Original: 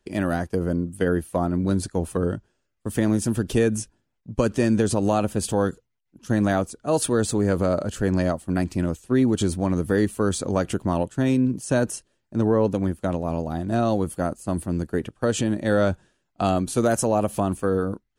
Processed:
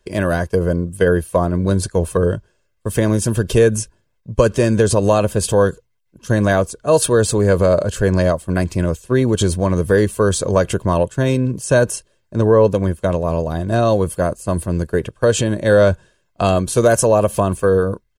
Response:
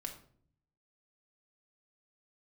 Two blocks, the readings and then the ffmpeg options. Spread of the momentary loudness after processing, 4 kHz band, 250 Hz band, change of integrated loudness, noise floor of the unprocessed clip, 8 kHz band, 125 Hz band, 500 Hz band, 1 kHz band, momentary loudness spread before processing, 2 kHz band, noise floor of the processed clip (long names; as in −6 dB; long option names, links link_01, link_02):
7 LU, +7.5 dB, +2.5 dB, +7.0 dB, −75 dBFS, +7.5 dB, +8.0 dB, +9.0 dB, +6.0 dB, 6 LU, +8.5 dB, −65 dBFS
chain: -af "aecho=1:1:1.9:0.55,volume=6.5dB"